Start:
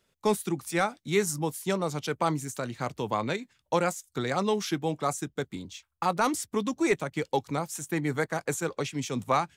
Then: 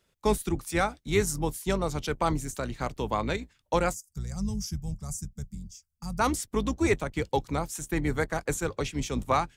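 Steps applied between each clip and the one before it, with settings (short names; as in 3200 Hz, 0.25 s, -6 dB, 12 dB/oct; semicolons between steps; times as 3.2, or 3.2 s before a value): octaver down 2 oct, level -2 dB; spectral gain 3.94–6.19, 220–4600 Hz -21 dB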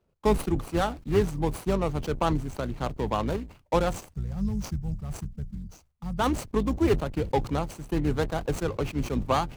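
median filter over 25 samples; sustainer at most 140 dB/s; gain +2.5 dB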